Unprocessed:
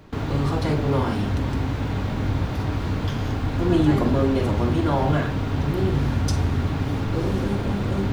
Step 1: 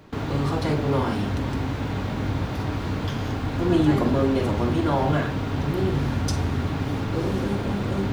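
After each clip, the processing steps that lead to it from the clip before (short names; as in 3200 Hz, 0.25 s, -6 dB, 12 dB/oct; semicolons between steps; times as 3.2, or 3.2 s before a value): low shelf 71 Hz -8.5 dB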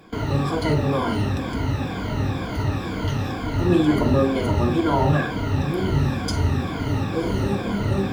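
moving spectral ripple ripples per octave 1.8, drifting -2.1 Hz, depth 14 dB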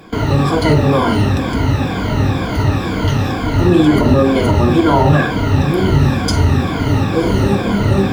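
maximiser +10 dB; gain -1 dB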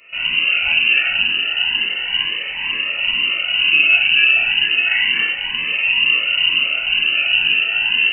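shoebox room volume 400 m³, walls furnished, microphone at 3.5 m; inverted band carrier 2900 Hz; cascading phaser rising 0.32 Hz; gain -10.5 dB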